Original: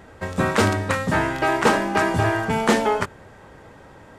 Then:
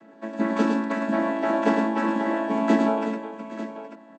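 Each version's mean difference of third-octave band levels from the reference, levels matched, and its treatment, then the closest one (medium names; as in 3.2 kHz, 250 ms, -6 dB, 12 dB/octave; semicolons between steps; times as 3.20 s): 10.5 dB: vocoder on a held chord major triad, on A3; on a send: multi-tap echo 108/367/820/894 ms -5/-11/-17/-12.5 dB; on the sum: trim -3 dB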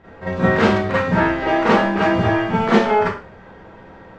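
6.5 dB: distance through air 200 m; Schroeder reverb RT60 0.36 s, combs from 33 ms, DRR -9.5 dB; trim -5 dB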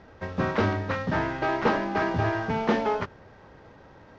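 4.0 dB: CVSD coder 32 kbps; low-pass 2.5 kHz 6 dB/octave; trim -4.5 dB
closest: third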